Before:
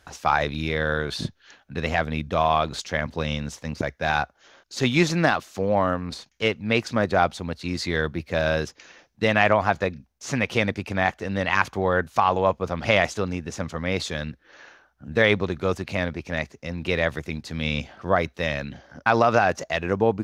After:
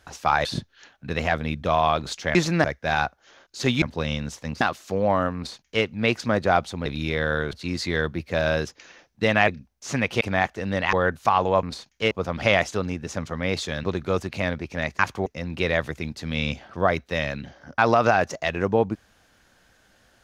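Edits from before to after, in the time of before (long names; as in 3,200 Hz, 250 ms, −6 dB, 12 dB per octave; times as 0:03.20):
0:00.45–0:01.12: move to 0:07.53
0:03.02–0:03.81: swap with 0:04.99–0:05.28
0:06.03–0:06.51: duplicate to 0:12.54
0:09.48–0:09.87: remove
0:10.60–0:10.85: remove
0:11.57–0:11.84: move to 0:16.54
0:14.27–0:15.39: remove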